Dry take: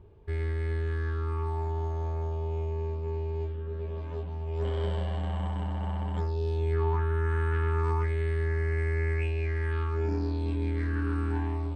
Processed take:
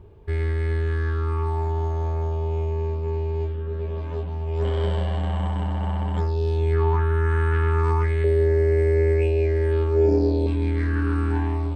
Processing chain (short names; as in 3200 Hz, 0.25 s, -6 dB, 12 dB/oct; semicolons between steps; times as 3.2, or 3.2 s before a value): 8.24–10.47 EQ curve 220 Hz 0 dB, 540 Hz +13 dB, 1200 Hz -10 dB, 4400 Hz 0 dB; gain +6.5 dB